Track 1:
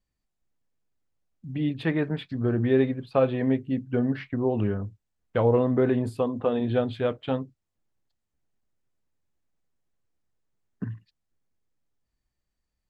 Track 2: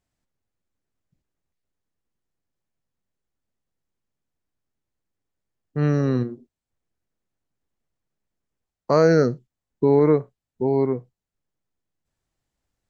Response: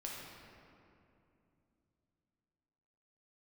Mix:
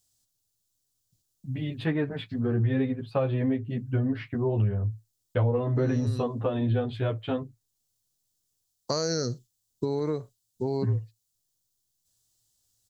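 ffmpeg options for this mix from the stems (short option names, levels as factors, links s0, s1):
-filter_complex "[0:a]agate=range=0.0224:threshold=0.00398:ratio=3:detection=peak,asplit=2[s0][s1];[s1]adelay=10.4,afreqshift=-1.6[s2];[s0][s2]amix=inputs=2:normalize=1,volume=1.33,asplit=2[s3][s4];[1:a]acompressor=threshold=0.126:ratio=6,aexciter=amount=8.8:drive=5.7:freq=3300,volume=0.531[s5];[s4]apad=whole_len=568788[s6];[s5][s6]sidechaincompress=threshold=0.0355:ratio=8:attack=7.3:release=704[s7];[s3][s7]amix=inputs=2:normalize=0,equalizer=f=110:t=o:w=0.33:g=12,acompressor=threshold=0.0708:ratio=3"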